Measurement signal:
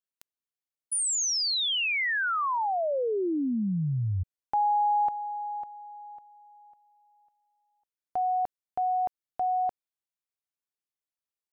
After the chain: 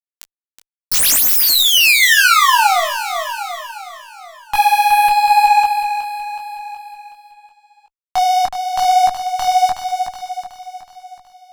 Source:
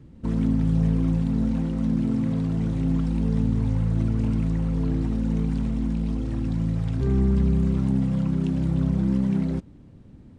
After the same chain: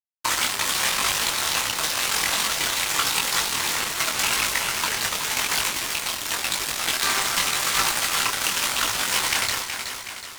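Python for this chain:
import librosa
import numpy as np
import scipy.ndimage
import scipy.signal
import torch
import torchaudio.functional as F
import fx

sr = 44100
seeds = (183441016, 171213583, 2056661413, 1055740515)

y = fx.tracing_dist(x, sr, depth_ms=0.14)
y = scipy.signal.sosfilt(scipy.signal.butter(4, 980.0, 'highpass', fs=sr, output='sos'), y)
y = fx.high_shelf(y, sr, hz=2300.0, db=10.5)
y = fx.fuzz(y, sr, gain_db=43.0, gate_db=-43.0)
y = fx.echo_feedback(y, sr, ms=371, feedback_pct=53, wet_db=-8)
y = fx.detune_double(y, sr, cents=31)
y = F.gain(torch.from_numpy(y), 5.5).numpy()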